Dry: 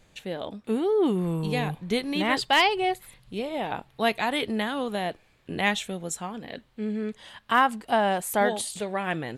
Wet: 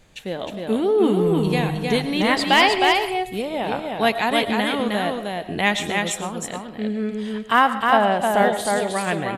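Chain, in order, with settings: 7.70–8.65 s: treble shelf 6.6 kHz -12 dB; on a send: delay 311 ms -3.5 dB; on the sum: algorithmic reverb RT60 0.49 s, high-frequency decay 0.65×, pre-delay 70 ms, DRR 11.5 dB; trim +4.5 dB

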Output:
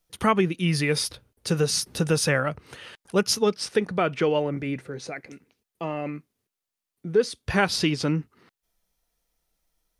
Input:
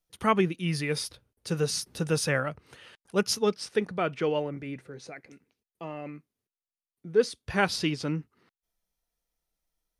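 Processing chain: compression 2:1, threshold -29 dBFS, peak gain reduction 7.5 dB; trim +8 dB

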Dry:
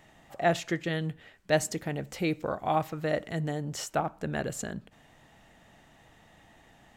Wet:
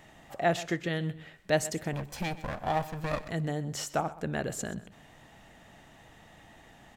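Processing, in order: 1.93–3.29 s: comb filter that takes the minimum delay 1.2 ms; in parallel at -2 dB: compression, threshold -42 dBFS, peak gain reduction 21 dB; on the sum: feedback delay 127 ms, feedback 26%, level -17 dB; trim -2 dB

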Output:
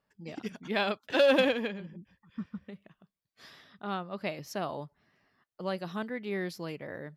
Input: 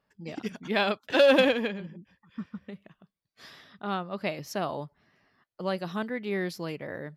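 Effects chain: 1.93–2.64 s: bass shelf 170 Hz +7 dB; trim -3.5 dB

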